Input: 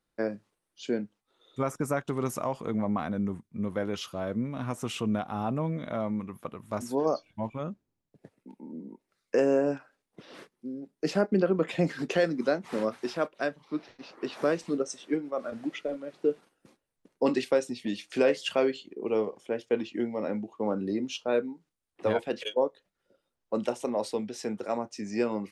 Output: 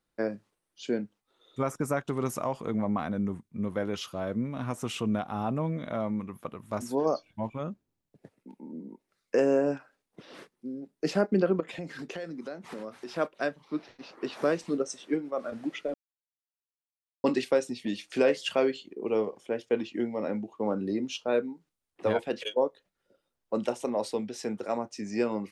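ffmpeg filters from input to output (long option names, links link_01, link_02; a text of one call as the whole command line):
ffmpeg -i in.wav -filter_complex "[0:a]asettb=1/sr,asplit=3[link_01][link_02][link_03];[link_01]atrim=end=11.604[link_04];[link_02]atrim=start=11.6:end=13.14,asetpts=PTS-STARTPTS,afade=type=in:duration=0.004:curve=qsin,afade=type=out:start_time=1.536:duration=0.004:curve=qsin,acompressor=threshold=-38dB:ratio=3:attack=3.2:release=140:knee=1:detection=peak[link_05];[link_03]atrim=start=13.136[link_06];[link_04][link_05]acrossfade=duration=0.004:curve1=hsin:curve2=qsin[link_07];[link_07][link_06]acrossfade=duration=0.004:curve1=qsin:curve2=hsin,asplit=3[link_08][link_09][link_10];[link_08]atrim=end=15.94,asetpts=PTS-STARTPTS,afade=type=out:start_time=15.936:duration=0.004:curve=hsin[link_11];[link_09]atrim=start=15.94:end=17.24,asetpts=PTS-STARTPTS,volume=0[link_12];[link_10]atrim=start=17.24,asetpts=PTS-STARTPTS,afade=type=in:duration=0.004:curve=hsin[link_13];[link_11][link_12][link_13]concat=n=3:v=0:a=1" out.wav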